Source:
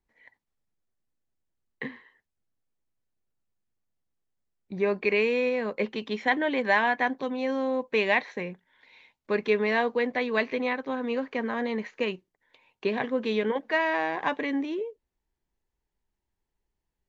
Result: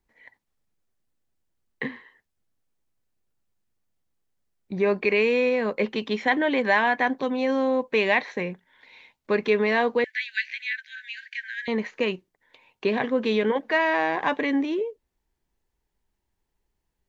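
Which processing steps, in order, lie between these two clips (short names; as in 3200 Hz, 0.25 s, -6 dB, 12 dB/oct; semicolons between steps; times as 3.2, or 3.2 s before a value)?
in parallel at -2.5 dB: limiter -21 dBFS, peak gain reduction 11 dB; 10.04–11.68 on the sum: brick-wall FIR high-pass 1500 Hz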